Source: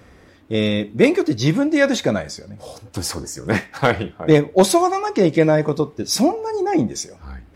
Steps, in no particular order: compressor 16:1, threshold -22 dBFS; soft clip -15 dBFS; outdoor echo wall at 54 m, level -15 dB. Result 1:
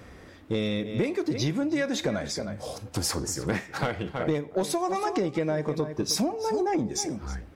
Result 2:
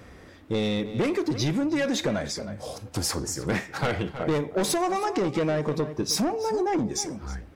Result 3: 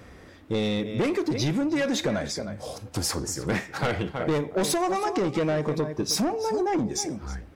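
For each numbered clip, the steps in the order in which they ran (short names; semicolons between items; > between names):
outdoor echo > compressor > soft clip; soft clip > outdoor echo > compressor; outdoor echo > soft clip > compressor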